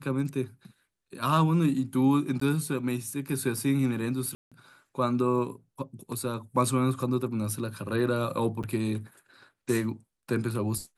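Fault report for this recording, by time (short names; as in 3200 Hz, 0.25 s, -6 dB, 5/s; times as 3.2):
2.4–2.41 gap 14 ms
4.35–4.52 gap 0.166 s
8.63–8.64 gap 7.1 ms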